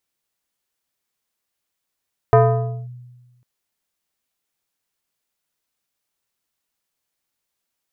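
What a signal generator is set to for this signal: FM tone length 1.10 s, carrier 123 Hz, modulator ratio 4.56, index 1.5, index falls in 0.55 s linear, decay 1.32 s, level -6.5 dB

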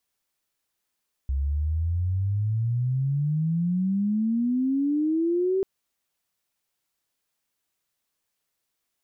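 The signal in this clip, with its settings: sweep logarithmic 66 Hz -> 390 Hz -22.5 dBFS -> -20.5 dBFS 4.34 s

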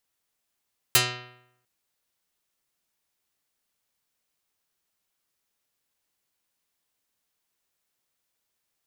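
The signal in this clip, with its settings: plucked string B2, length 0.70 s, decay 0.78 s, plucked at 0.43, dark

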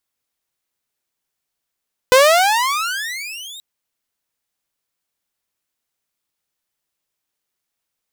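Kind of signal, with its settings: gliding synth tone saw, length 1.48 s, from 496 Hz, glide +35.5 st, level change -25.5 dB, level -4 dB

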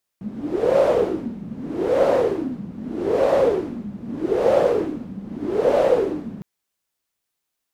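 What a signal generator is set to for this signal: wind-like swept noise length 6.21 s, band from 200 Hz, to 560 Hz, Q 7.9, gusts 5, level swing 17 dB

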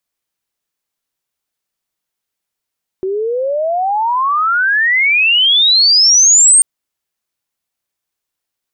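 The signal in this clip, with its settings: sweep logarithmic 370 Hz -> 8.8 kHz -15 dBFS -> -4 dBFS 3.59 s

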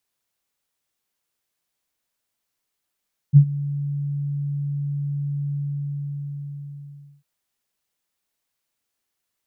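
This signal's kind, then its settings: ADSR sine 143 Hz, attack 37 ms, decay 78 ms, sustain -18.5 dB, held 2.20 s, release 1700 ms -4.5 dBFS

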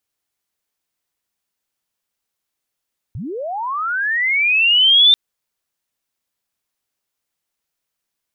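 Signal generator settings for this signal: sweep linear 85 Hz -> 3.6 kHz -25 dBFS -> -6.5 dBFS 1.99 s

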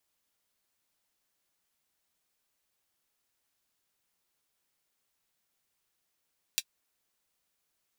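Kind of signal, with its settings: closed hi-hat, high-pass 3.1 kHz, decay 0.06 s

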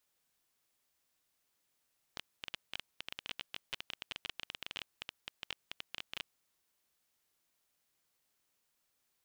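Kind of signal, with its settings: random clicks 16 per s -22.5 dBFS 4.13 s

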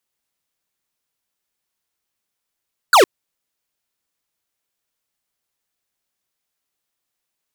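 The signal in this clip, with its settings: laser zap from 1.6 kHz, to 330 Hz, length 0.11 s square, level -9.5 dB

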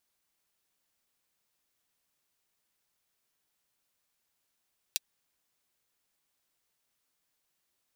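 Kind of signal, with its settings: closed hi-hat, high-pass 3.4 kHz, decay 0.03 s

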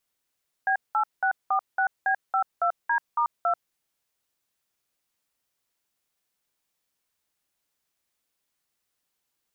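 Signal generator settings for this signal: DTMF "B8646B52D*2", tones 88 ms, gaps 190 ms, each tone -23 dBFS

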